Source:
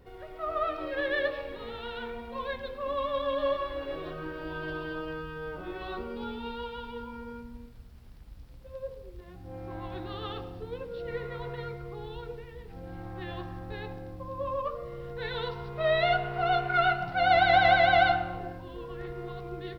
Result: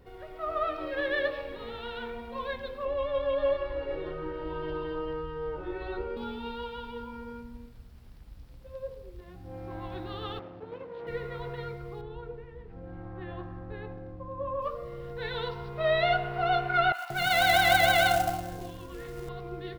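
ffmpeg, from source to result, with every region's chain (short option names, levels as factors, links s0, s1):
-filter_complex "[0:a]asettb=1/sr,asplit=3[s0][s1][s2];[s0]atrim=end=2.854[s3];[s1]atrim=start=2.85:end=6.17,asetpts=PTS-STARTPTS,afade=t=in:d=0.004:c=qsin,afade=t=out:st=3.316:d=0.004:c=qsin,aemphasis=mode=reproduction:type=75kf,aecho=1:1:2.2:0.77,atrim=end_sample=146412[s4];[s2]atrim=start=6.166[s5];[s3][s4]acrossfade=d=0.004:c1=hsin:c2=qsin[s6];[s6][s5]acrossfade=d=0.004:c1=qsin:c2=hsin,asettb=1/sr,asplit=3[s7][s8][s9];[s7]atrim=end=10.394[s10];[s8]atrim=start=10.39:end=11.07,asetpts=PTS-STARTPTS,afade=t=in:d=0.004:c=qsin,afade=t=out:st=0.676:d=0.004:c=qsin,aeval=exprs='clip(val(0),-1,0.00562)':c=same,highpass=130,lowpass=2600[s11];[s9]atrim=start=11.066[s12];[s10][s11]acrossfade=d=0.004:c1=hsin:c2=qsin[s13];[s13][s12]acrossfade=d=0.004:c1=qsin:c2=hsin,asettb=1/sr,asplit=3[s14][s15][s16];[s14]atrim=end=12.014[s17];[s15]atrim=start=12.01:end=14.62,asetpts=PTS-STARTPTS,afade=t=in:d=0.004:c=qsin,afade=t=out:st=2.606:d=0.004:c=qsin,lowpass=1400,aemphasis=mode=production:type=75fm,bandreject=f=820:w=10[s18];[s16]atrim=start=14.616[s19];[s17][s18]acrossfade=d=0.004:c1=hsin:c2=qsin[s20];[s20][s19]acrossfade=d=0.004:c1=qsin:c2=hsin,asettb=1/sr,asplit=3[s21][s22][s23];[s21]atrim=end=16.924[s24];[s22]atrim=start=16.92:end=19.29,asetpts=PTS-STARTPTS,afade=t=in:d=0.004:c=qsin,afade=t=out:st=2.366:d=0.004:c=qsin,acrossover=split=780[s25][s26];[s25]adelay=180[s27];[s27][s26]amix=inputs=2:normalize=0,atrim=end_sample=104517,acrusher=bits=4:mode=log:mix=0:aa=0.000001,adynamicequalizer=threshold=0.0126:dfrequency=2300:dqfactor=0.7:tfrequency=2300:tqfactor=0.7:attack=5:release=100:ratio=0.375:range=2.5:mode=boostabove:tftype=highshelf[s28];[s23]atrim=start=19.286[s29];[s24][s28]acrossfade=d=0.004:c1=hsin:c2=qsin[s30];[s30][s29]acrossfade=d=0.004:c1=qsin:c2=hsin"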